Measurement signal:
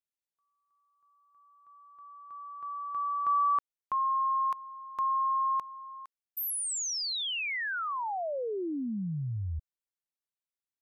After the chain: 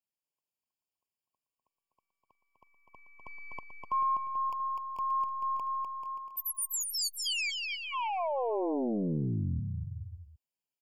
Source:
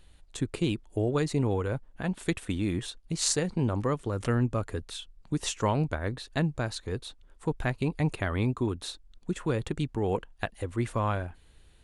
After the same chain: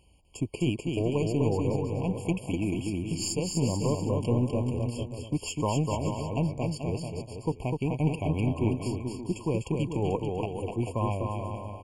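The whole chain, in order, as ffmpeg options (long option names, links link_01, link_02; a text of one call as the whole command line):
ffmpeg -i in.wav -filter_complex "[0:a]highpass=58,asplit=2[link_01][link_02];[link_02]alimiter=limit=-18.5dB:level=0:latency=1:release=496,volume=-1.5dB[link_03];[link_01][link_03]amix=inputs=2:normalize=0,aeval=exprs='0.422*(cos(1*acos(clip(val(0)/0.422,-1,1)))-cos(1*PI/2))+0.0211*(cos(4*acos(clip(val(0)/0.422,-1,1)))-cos(4*PI/2))':channel_layout=same,aecho=1:1:250|437.5|578.1|683.6|762.7:0.631|0.398|0.251|0.158|0.1,afftfilt=real='re*eq(mod(floor(b*sr/1024/1100),2),0)':imag='im*eq(mod(floor(b*sr/1024/1100),2),0)':win_size=1024:overlap=0.75,volume=-5dB" out.wav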